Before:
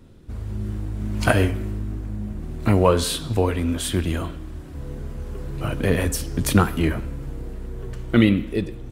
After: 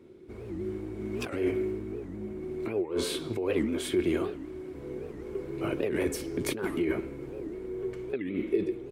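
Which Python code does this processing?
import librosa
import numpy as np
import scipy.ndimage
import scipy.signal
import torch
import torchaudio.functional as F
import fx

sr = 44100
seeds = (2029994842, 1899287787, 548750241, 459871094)

y = fx.highpass(x, sr, hz=260.0, slope=6)
y = fx.high_shelf(y, sr, hz=3900.0, db=-6.5)
y = fx.over_compress(y, sr, threshold_db=-27.0, ratio=-1.0)
y = fx.small_body(y, sr, hz=(370.0, 2200.0), ring_ms=45, db=17)
y = fx.record_warp(y, sr, rpm=78.0, depth_cents=250.0)
y = F.gain(torch.from_numpy(y), -9.0).numpy()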